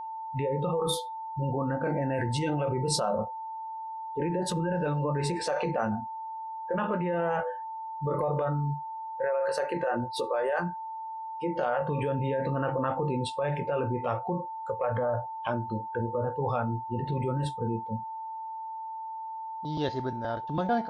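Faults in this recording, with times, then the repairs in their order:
tone 890 Hz -35 dBFS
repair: notch 890 Hz, Q 30

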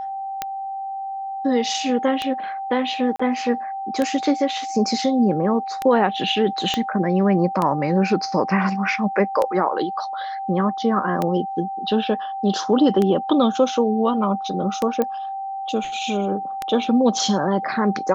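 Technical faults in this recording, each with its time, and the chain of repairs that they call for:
tick 33 1/3 rpm -9 dBFS
tone 780 Hz -26 dBFS
3.16–3.19 gap 35 ms
6.74 pop -8 dBFS
15.02 pop -10 dBFS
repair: de-click; notch 780 Hz, Q 30; interpolate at 3.16, 35 ms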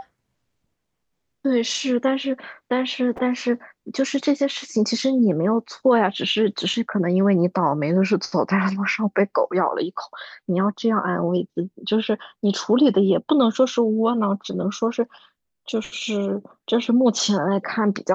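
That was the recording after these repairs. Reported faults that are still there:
6.74 pop

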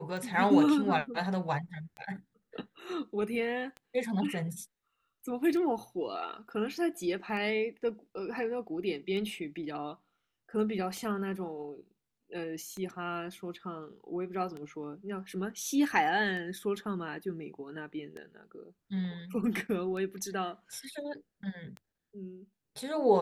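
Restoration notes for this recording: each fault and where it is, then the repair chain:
tick 33 1/3 rpm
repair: de-click

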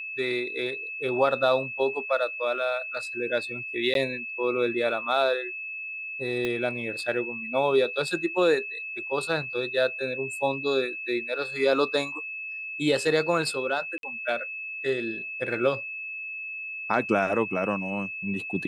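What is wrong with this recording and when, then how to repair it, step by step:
tone 2600 Hz -33 dBFS
3.94–3.95 gap 12 ms
6.45 pop -16 dBFS
13.98–14.03 gap 52 ms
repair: de-click; notch 2600 Hz, Q 30; interpolate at 3.94, 12 ms; interpolate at 13.98, 52 ms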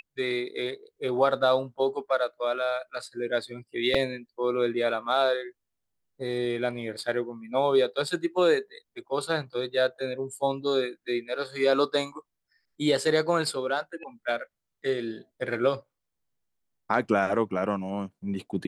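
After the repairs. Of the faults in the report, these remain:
6.45 pop

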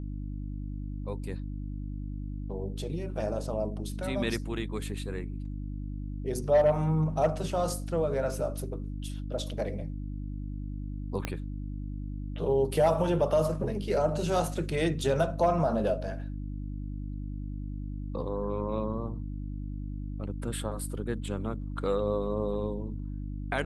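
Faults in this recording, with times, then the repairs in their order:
hum 50 Hz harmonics 6 -36 dBFS
11.25 pop -16 dBFS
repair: de-click; de-hum 50 Hz, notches 6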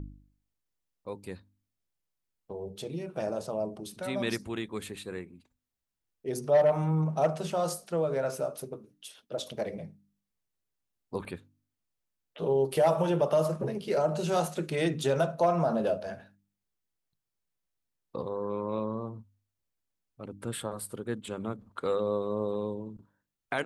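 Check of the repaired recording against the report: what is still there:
11.25 pop

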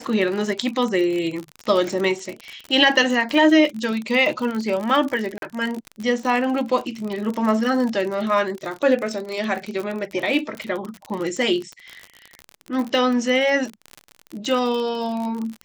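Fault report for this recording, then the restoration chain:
crackle 42/s -25 dBFS
5.38–5.42 gap 42 ms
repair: de-click; interpolate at 5.38, 42 ms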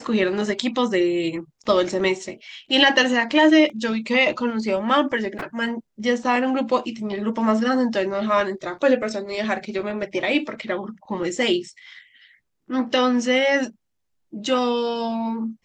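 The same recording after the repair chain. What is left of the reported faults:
none

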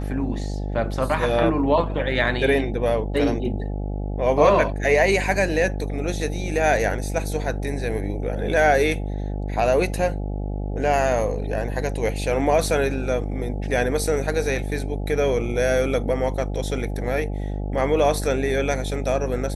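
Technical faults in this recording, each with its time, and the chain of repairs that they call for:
buzz 50 Hz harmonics 17 -27 dBFS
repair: de-hum 50 Hz, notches 17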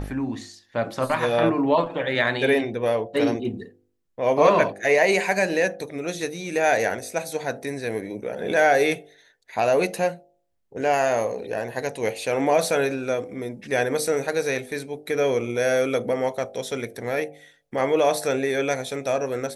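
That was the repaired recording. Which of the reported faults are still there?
none

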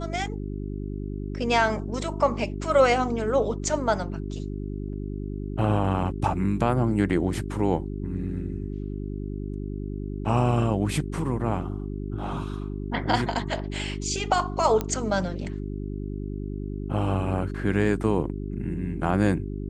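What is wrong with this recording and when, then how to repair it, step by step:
hum 50 Hz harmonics 8 -32 dBFS
14.81 pop -13 dBFS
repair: de-click; de-hum 50 Hz, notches 8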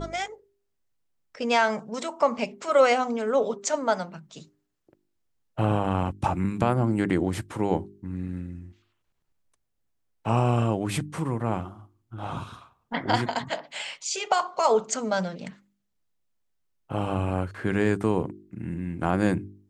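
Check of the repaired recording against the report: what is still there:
none

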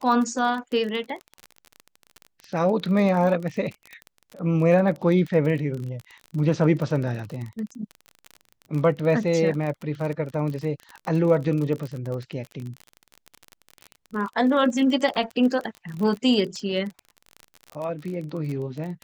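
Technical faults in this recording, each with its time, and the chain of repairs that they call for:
crackle 31/s -29 dBFS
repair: de-click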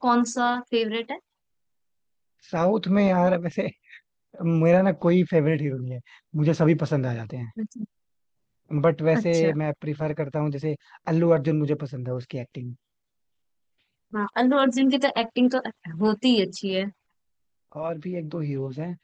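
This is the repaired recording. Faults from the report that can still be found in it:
none

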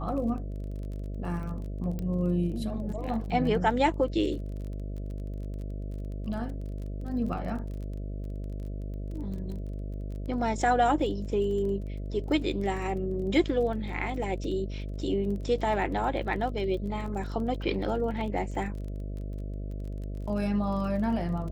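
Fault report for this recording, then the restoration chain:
buzz 50 Hz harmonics 13 -35 dBFS
crackle 26/s -38 dBFS
1.99 pop -23 dBFS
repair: de-click; de-hum 50 Hz, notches 13

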